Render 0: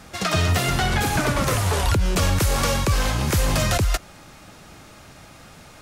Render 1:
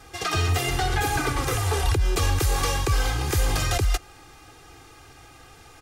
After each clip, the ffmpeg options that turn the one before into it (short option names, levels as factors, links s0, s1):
-af "aecho=1:1:2.5:0.99,volume=0.501"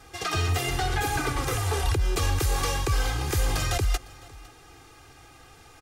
-af "aecho=1:1:506:0.075,volume=0.75"